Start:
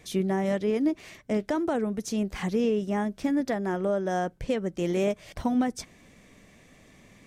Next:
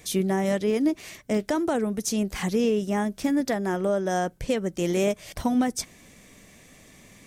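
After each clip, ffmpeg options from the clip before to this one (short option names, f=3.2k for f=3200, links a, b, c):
-af "highshelf=f=5.5k:g=11.5,volume=2dB"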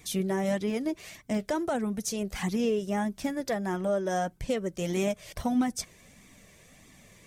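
-af "flanger=delay=0.8:depth=1.3:regen=-37:speed=1.6:shape=triangular"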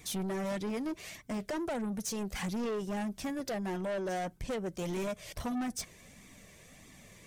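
-af "asoftclip=type=tanh:threshold=-31.5dB"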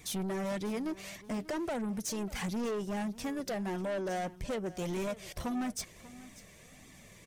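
-af "aecho=1:1:591|1182:0.126|0.0227"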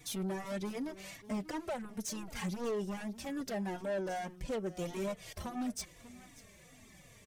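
-filter_complex "[0:a]asplit=2[a][b];[b]adelay=3.6,afreqshift=-2.7[c];[a][c]amix=inputs=2:normalize=1"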